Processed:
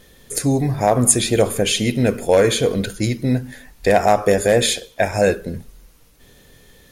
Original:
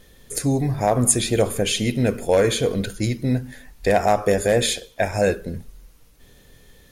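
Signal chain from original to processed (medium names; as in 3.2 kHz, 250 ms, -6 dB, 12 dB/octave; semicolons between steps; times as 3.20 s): bass shelf 78 Hz -5.5 dB; trim +3.5 dB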